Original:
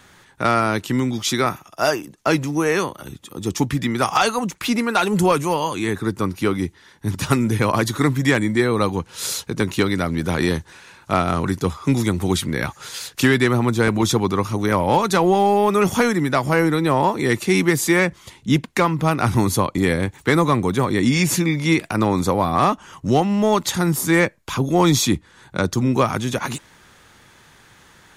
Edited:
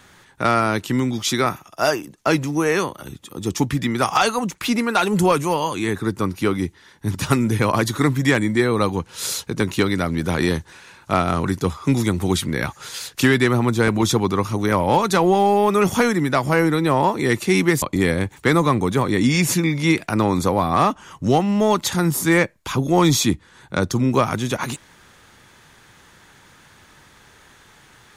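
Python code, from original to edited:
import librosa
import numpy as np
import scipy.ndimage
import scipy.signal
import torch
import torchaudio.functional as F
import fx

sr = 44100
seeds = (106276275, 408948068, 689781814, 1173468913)

y = fx.edit(x, sr, fx.cut(start_s=17.82, length_s=1.82), tone=tone)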